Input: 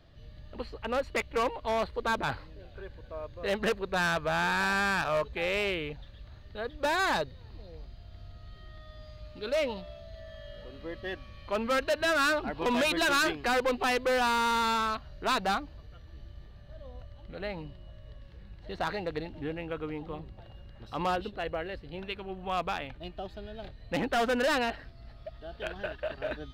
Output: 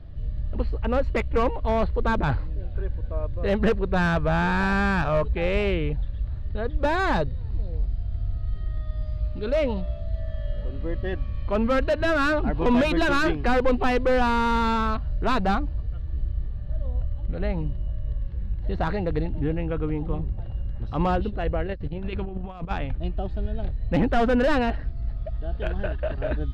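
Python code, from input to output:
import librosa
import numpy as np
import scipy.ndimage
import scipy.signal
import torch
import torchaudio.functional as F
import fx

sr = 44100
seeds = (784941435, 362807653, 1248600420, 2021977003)

y = fx.riaa(x, sr, side='playback')
y = fx.over_compress(y, sr, threshold_db=-33.0, ratio=-0.5, at=(21.67, 22.71))
y = y * 10.0 ** (3.5 / 20.0)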